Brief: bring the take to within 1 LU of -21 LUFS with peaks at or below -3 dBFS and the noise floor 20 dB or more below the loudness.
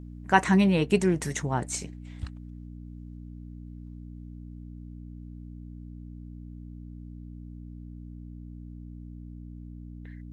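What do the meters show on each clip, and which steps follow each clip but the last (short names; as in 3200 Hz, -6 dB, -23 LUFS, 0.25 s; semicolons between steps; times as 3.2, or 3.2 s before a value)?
hum 60 Hz; harmonics up to 300 Hz; hum level -39 dBFS; loudness -25.5 LUFS; peak -4.5 dBFS; loudness target -21.0 LUFS
-> de-hum 60 Hz, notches 5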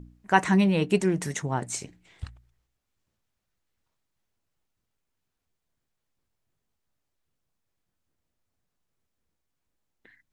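hum none; loudness -25.0 LUFS; peak -4.0 dBFS; loudness target -21.0 LUFS
-> gain +4 dB; limiter -3 dBFS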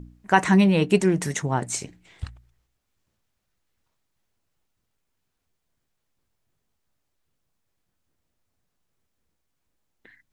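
loudness -21.5 LUFS; peak -3.0 dBFS; noise floor -78 dBFS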